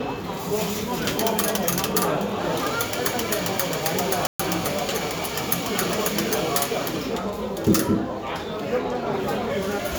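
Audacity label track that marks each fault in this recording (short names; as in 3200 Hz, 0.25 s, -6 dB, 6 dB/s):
4.270000	4.390000	gap 0.125 s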